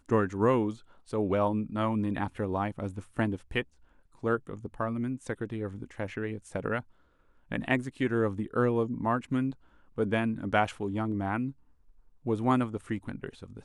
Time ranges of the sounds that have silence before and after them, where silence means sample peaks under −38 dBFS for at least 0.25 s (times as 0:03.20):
0:01.13–0:03.62
0:04.23–0:06.80
0:07.52–0:09.53
0:09.98–0:11.51